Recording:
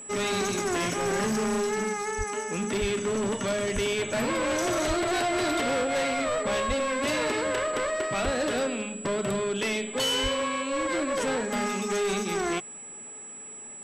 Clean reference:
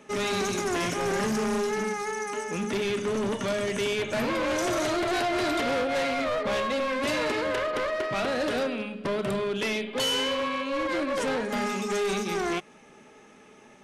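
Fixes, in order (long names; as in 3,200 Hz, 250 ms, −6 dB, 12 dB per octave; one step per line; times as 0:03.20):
notch filter 7,800 Hz, Q 30
high-pass at the plosives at 0:02.17/0:02.80/0:03.74/0:04.87/0:06.67/0:08.24/0:10.22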